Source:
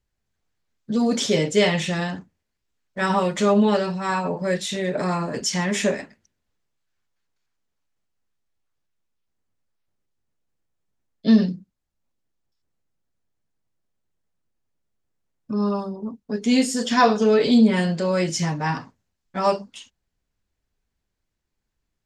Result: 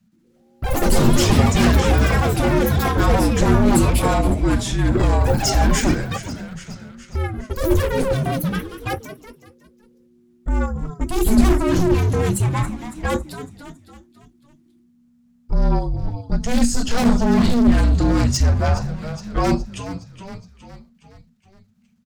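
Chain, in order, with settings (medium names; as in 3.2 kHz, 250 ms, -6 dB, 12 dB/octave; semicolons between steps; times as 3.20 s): one-sided wavefolder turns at -17.5 dBFS; in parallel at +3 dB: level held to a coarse grid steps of 13 dB; on the sum: bass shelf 190 Hz +9.5 dB; on a send: frequency-shifting echo 416 ms, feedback 52%, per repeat -68 Hz, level -16 dB; on the sum: saturation -13 dBFS, distortion -9 dB; dynamic bell 3.1 kHz, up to -6 dB, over -41 dBFS, Q 0.84; frequency shift -240 Hz; ever faster or slower copies 119 ms, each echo +7 st, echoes 3; trim +2 dB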